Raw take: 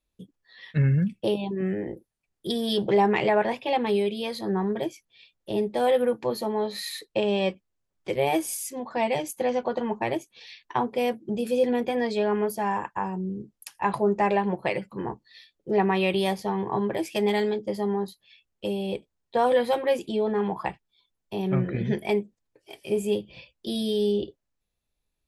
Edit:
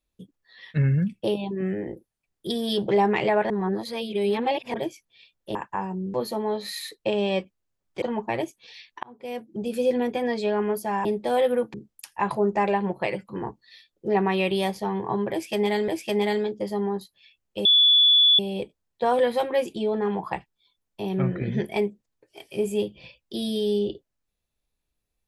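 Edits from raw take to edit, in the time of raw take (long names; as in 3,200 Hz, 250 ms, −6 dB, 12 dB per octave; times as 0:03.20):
0:03.50–0:04.74: reverse
0:05.55–0:06.24: swap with 0:12.78–0:13.37
0:08.12–0:09.75: remove
0:10.76–0:11.49: fade in
0:16.95–0:17.51: repeat, 2 plays
0:18.72: insert tone 3,440 Hz −13.5 dBFS 0.74 s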